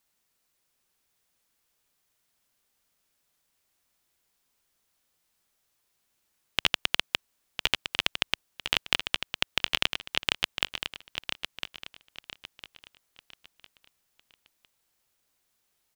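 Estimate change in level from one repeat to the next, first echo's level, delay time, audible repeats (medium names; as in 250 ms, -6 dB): -9.5 dB, -8.0 dB, 1005 ms, 3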